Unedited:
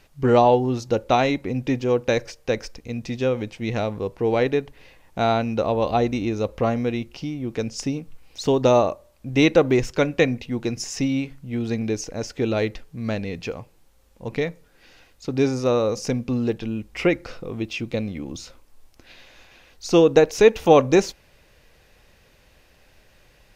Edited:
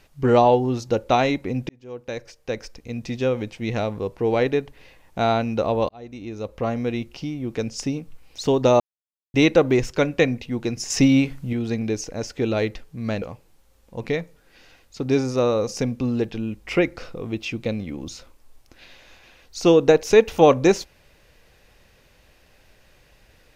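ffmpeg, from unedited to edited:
-filter_complex "[0:a]asplit=8[a][b][c][d][e][f][g][h];[a]atrim=end=1.69,asetpts=PTS-STARTPTS,afade=t=out:st=1.686:d=0.004:c=hsin[i];[b]atrim=start=1.69:end=5.89,asetpts=PTS-STARTPTS,afade=t=in:d=1.39,afade=t=out:st=4.196:d=0.004:c=hsin[j];[c]atrim=start=5.89:end=8.8,asetpts=PTS-STARTPTS,afade=t=in:d=1.11,afade=t=out:st=2.906:d=0.004:c=hsin[k];[d]atrim=start=8.8:end=9.34,asetpts=PTS-STARTPTS,volume=0[l];[e]atrim=start=9.34:end=10.902,asetpts=PTS-STARTPTS,afade=t=in:d=0.004:c=hsin[m];[f]atrim=start=10.898:end=11.532,asetpts=PTS-STARTPTS,volume=7dB[n];[g]atrim=start=11.528:end=13.222[o];[h]atrim=start=13.498[p];[i][j][k][l][m]concat=n=5:v=0:a=1[q];[q][n]acrossfade=d=0.004:c1=hsin:c2=hsin[r];[r][o]acrossfade=d=0.004:c1=hsin:c2=hsin[s];[s][p]acrossfade=d=0.004:c1=hsin:c2=hsin"

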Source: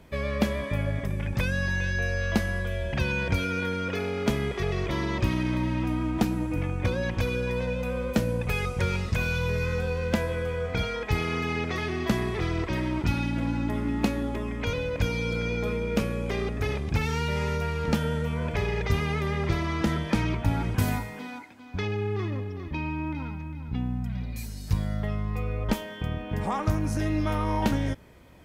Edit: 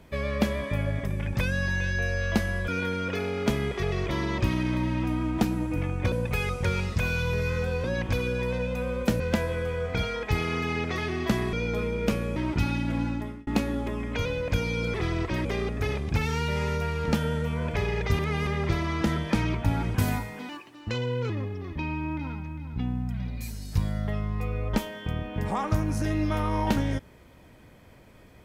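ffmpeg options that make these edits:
-filter_complex "[0:a]asplit=14[a][b][c][d][e][f][g][h][i][j][k][l][m][n];[a]atrim=end=2.682[o];[b]atrim=start=3.478:end=6.922[p];[c]atrim=start=8.278:end=10.002[q];[d]atrim=start=6.918:end=8.282[r];[e]atrim=start=9.998:end=12.332[s];[f]atrim=start=15.418:end=16.252[t];[g]atrim=start=12.838:end=13.95,asetpts=PTS-STARTPTS,afade=t=out:st=0.692:d=0.42[u];[h]atrim=start=13.95:end=15.422,asetpts=PTS-STARTPTS,afade=t=in:d=0.004:c=hsin[v];[i]atrim=start=12.328:end=12.842[w];[j]atrim=start=16.248:end=18.992[x];[k]atrim=start=18.988:end=19.272,asetpts=PTS-STARTPTS,areverse[y];[l]atrim=start=19.268:end=21.294[z];[m]atrim=start=21.29:end=22.25,asetpts=PTS-STARTPTS,asetrate=52479,aresample=44100,atrim=end_sample=35576,asetpts=PTS-STARTPTS[aa];[n]atrim=start=22.246[ab];[o][p]acrossfade=d=0.004:c1=hsin:c2=hsin[ac];[ac][q]acrossfade=d=0.004:c1=hsin:c2=hsin[ad];[ad][r]acrossfade=d=0.004:c1=hsin:c2=hsin[ae];[ae][s]acrossfade=d=0.004:c1=hsin:c2=hsin[af];[af][t]acrossfade=d=0.004:c1=hsin:c2=hsin[ag];[u][v]concat=n=2:v=0:a=1[ah];[ag][ah]acrossfade=d=0.004:c1=hsin:c2=hsin[ai];[ai][w]acrossfade=d=0.004:c1=hsin:c2=hsin[aj];[aj][x]acrossfade=d=0.004:c1=hsin:c2=hsin[ak];[ak][y]acrossfade=d=0.004:c1=hsin:c2=hsin[al];[al][z]acrossfade=d=0.004:c1=hsin:c2=hsin[am];[am][aa]acrossfade=d=0.004:c1=hsin:c2=hsin[an];[an][ab]acrossfade=d=0.004:c1=hsin:c2=hsin"

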